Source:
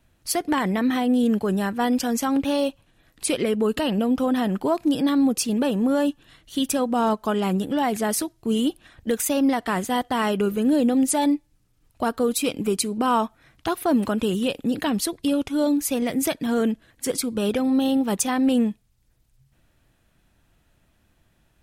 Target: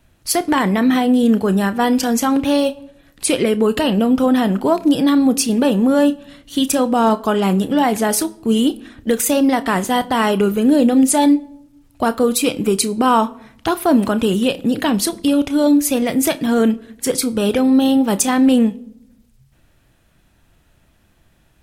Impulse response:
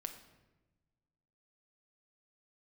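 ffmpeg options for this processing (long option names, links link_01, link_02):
-filter_complex "[0:a]asplit=2[link_01][link_02];[1:a]atrim=start_sample=2205,asetrate=79380,aresample=44100,adelay=31[link_03];[link_02][link_03]afir=irnorm=-1:irlink=0,volume=-5dB[link_04];[link_01][link_04]amix=inputs=2:normalize=0,volume=6.5dB"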